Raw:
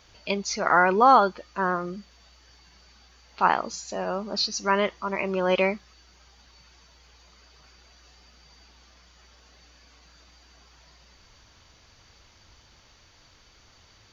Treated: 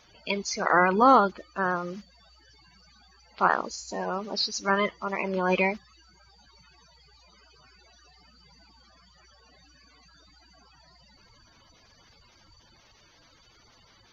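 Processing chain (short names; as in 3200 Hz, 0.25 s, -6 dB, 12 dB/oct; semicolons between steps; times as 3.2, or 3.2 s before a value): bin magnitudes rounded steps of 30 dB; gain -1 dB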